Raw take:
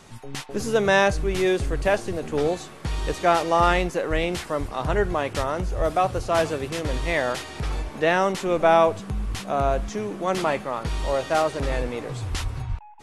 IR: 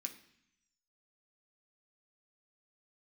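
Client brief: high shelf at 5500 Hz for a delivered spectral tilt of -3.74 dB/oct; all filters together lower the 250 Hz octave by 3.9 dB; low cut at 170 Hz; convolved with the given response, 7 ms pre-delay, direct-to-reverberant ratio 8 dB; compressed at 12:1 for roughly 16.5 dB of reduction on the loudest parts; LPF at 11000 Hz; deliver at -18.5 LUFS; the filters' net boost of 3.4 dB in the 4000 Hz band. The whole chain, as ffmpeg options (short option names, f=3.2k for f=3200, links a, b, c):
-filter_complex "[0:a]highpass=170,lowpass=11k,equalizer=f=250:t=o:g=-5,equalizer=f=4k:t=o:g=6.5,highshelf=f=5.5k:g=-6,acompressor=threshold=-30dB:ratio=12,asplit=2[a][b];[1:a]atrim=start_sample=2205,adelay=7[c];[b][c]afir=irnorm=-1:irlink=0,volume=-4.5dB[d];[a][d]amix=inputs=2:normalize=0,volume=16.5dB"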